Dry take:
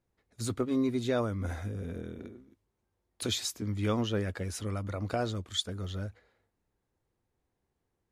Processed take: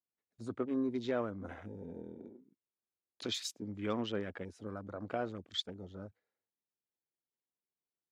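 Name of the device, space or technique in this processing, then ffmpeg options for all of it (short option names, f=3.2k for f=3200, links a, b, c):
over-cleaned archive recording: -af "highpass=180,lowpass=7.7k,afwtdn=0.00562,volume=-4.5dB"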